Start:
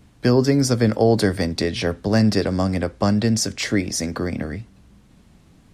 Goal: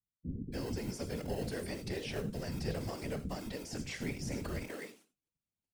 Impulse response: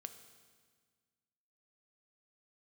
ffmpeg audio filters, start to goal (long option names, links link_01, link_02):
-filter_complex "[0:a]asplit=2[link_01][link_02];[link_02]acrusher=samples=38:mix=1:aa=0.000001,volume=-11.5dB[link_03];[link_01][link_03]amix=inputs=2:normalize=0,aexciter=amount=2.6:drive=4.1:freq=2200,agate=range=-38dB:threshold=-42dB:ratio=16:detection=peak,areverse,acompressor=threshold=-23dB:ratio=8,areverse[link_04];[1:a]atrim=start_sample=2205,atrim=end_sample=4410[link_05];[link_04][link_05]afir=irnorm=-1:irlink=0,acrossover=split=2700[link_06][link_07];[link_07]acompressor=threshold=-41dB:ratio=4:attack=1:release=60[link_08];[link_06][link_08]amix=inputs=2:normalize=0,afftfilt=real='hypot(re,im)*cos(2*PI*random(0))':imag='hypot(re,im)*sin(2*PI*random(1))':win_size=512:overlap=0.75,acrossover=split=270[link_09][link_10];[link_10]adelay=290[link_11];[link_09][link_11]amix=inputs=2:normalize=0,volume=1dB"